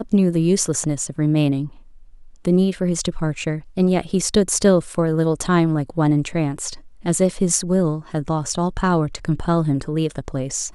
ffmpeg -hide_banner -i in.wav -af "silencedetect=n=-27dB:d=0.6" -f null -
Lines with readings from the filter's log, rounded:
silence_start: 1.67
silence_end: 2.45 | silence_duration: 0.78